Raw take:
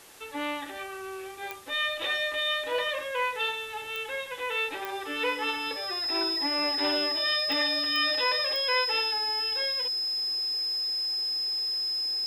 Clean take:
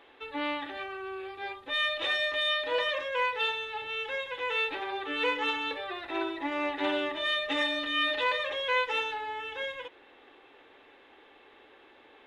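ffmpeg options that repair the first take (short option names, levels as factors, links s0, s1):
-af "adeclick=t=4,bandreject=f=5100:w=30,afwtdn=0.0028"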